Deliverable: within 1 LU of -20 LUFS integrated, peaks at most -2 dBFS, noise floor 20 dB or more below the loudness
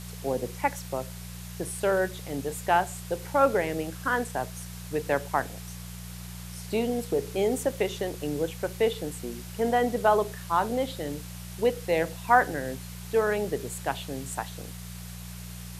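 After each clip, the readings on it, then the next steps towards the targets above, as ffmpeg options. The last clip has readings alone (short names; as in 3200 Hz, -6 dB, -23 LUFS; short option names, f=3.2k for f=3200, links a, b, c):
hum 60 Hz; harmonics up to 180 Hz; hum level -38 dBFS; noise floor -41 dBFS; noise floor target -49 dBFS; loudness -28.5 LUFS; peak -7.5 dBFS; loudness target -20.0 LUFS
-> -af "bandreject=f=60:t=h:w=4,bandreject=f=120:t=h:w=4,bandreject=f=180:t=h:w=4"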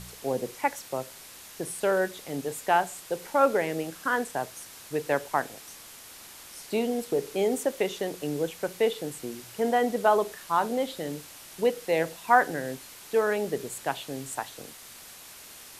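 hum none; noise floor -47 dBFS; noise floor target -49 dBFS
-> -af "afftdn=nr=6:nf=-47"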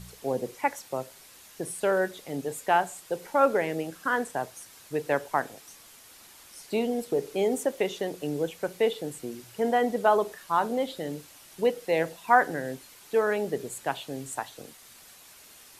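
noise floor -52 dBFS; loudness -28.5 LUFS; peak -7.5 dBFS; loudness target -20.0 LUFS
-> -af "volume=8.5dB,alimiter=limit=-2dB:level=0:latency=1"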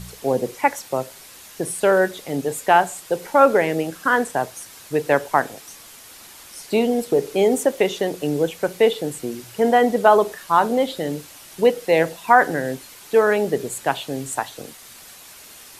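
loudness -20.5 LUFS; peak -2.0 dBFS; noise floor -43 dBFS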